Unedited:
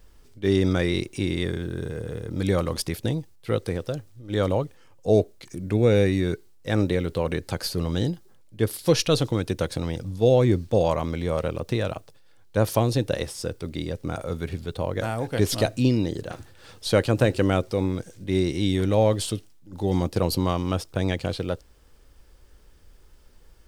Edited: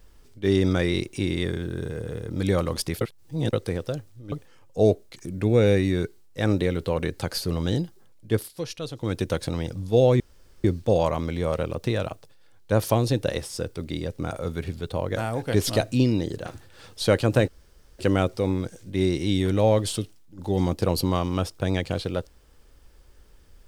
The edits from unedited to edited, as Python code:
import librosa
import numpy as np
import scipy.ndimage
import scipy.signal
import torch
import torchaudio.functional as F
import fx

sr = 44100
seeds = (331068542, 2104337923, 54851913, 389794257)

y = fx.edit(x, sr, fx.reverse_span(start_s=3.01, length_s=0.52),
    fx.cut(start_s=4.32, length_s=0.29),
    fx.fade_down_up(start_s=8.65, length_s=0.77, db=-12.5, fade_s=0.16),
    fx.insert_room_tone(at_s=10.49, length_s=0.44),
    fx.insert_room_tone(at_s=17.33, length_s=0.51), tone=tone)